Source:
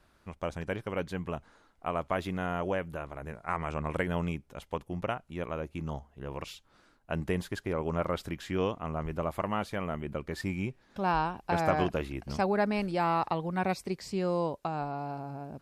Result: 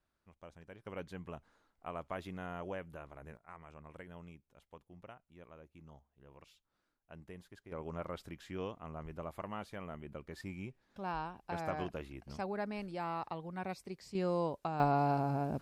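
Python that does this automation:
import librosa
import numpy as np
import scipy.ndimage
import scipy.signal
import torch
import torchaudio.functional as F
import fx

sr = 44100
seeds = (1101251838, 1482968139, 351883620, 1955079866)

y = fx.gain(x, sr, db=fx.steps((0.0, -19.0), (0.85, -10.5), (3.37, -20.0), (7.72, -11.0), (14.15, -4.0), (14.8, 6.0)))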